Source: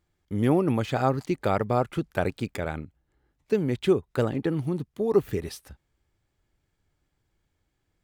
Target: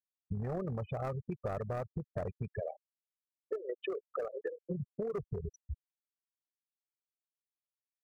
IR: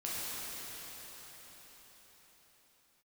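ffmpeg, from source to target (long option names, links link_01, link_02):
-filter_complex "[0:a]asplit=3[link_01][link_02][link_03];[link_01]afade=type=out:start_time=2.59:duration=0.02[link_04];[link_02]highpass=frequency=380:width=0.5412,highpass=frequency=380:width=1.3066,afade=type=in:start_time=2.59:duration=0.02,afade=type=out:start_time=4.7:duration=0.02[link_05];[link_03]afade=type=in:start_time=4.7:duration=0.02[link_06];[link_04][link_05][link_06]amix=inputs=3:normalize=0,aecho=1:1:1.7:0.98,tremolo=f=40:d=0.519,afftfilt=real='re*gte(hypot(re,im),0.0708)':imag='im*gte(hypot(re,im),0.0708)':win_size=1024:overlap=0.75,asoftclip=type=hard:threshold=-21dB,equalizer=frequency=3200:width=1.3:gain=-13.5,alimiter=level_in=4dB:limit=-24dB:level=0:latency=1:release=138,volume=-4dB,acompressor=threshold=-41dB:ratio=10,volume=7dB"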